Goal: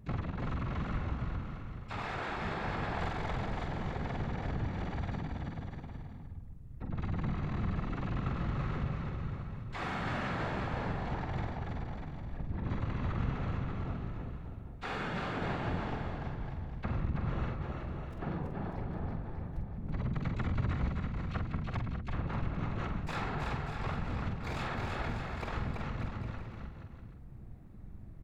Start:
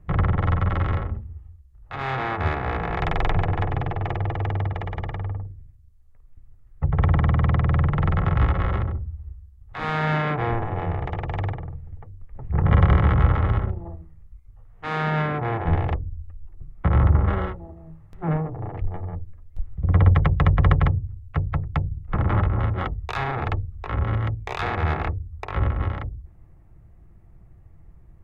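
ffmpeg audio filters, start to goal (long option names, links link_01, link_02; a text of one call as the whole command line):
ffmpeg -i in.wav -filter_complex "[0:a]acompressor=threshold=-35dB:ratio=3,asplit=3[link_01][link_02][link_03];[link_02]asetrate=22050,aresample=44100,atempo=2,volume=-13dB[link_04];[link_03]asetrate=88200,aresample=44100,atempo=0.5,volume=-10dB[link_05];[link_01][link_04][link_05]amix=inputs=3:normalize=0,afftfilt=real='hypot(re,im)*cos(2*PI*random(0))':imag='hypot(re,im)*sin(2*PI*random(1))':win_size=512:overlap=0.75,asplit=2[link_06][link_07];[link_07]adelay=46,volume=-6.5dB[link_08];[link_06][link_08]amix=inputs=2:normalize=0,asplit=2[link_09][link_10];[link_10]aecho=0:1:330|594|805.2|974.2|1109:0.631|0.398|0.251|0.158|0.1[link_11];[link_09][link_11]amix=inputs=2:normalize=0,volume=2dB" out.wav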